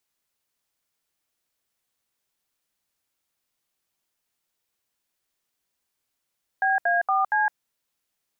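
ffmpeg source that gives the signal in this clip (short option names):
-f lavfi -i "aevalsrc='0.0841*clip(min(mod(t,0.233),0.162-mod(t,0.233))/0.002,0,1)*(eq(floor(t/0.233),0)*(sin(2*PI*770*mod(t,0.233))+sin(2*PI*1633*mod(t,0.233)))+eq(floor(t/0.233),1)*(sin(2*PI*697*mod(t,0.233))+sin(2*PI*1633*mod(t,0.233)))+eq(floor(t/0.233),2)*(sin(2*PI*770*mod(t,0.233))+sin(2*PI*1209*mod(t,0.233)))+eq(floor(t/0.233),3)*(sin(2*PI*852*mod(t,0.233))+sin(2*PI*1633*mod(t,0.233))))':d=0.932:s=44100"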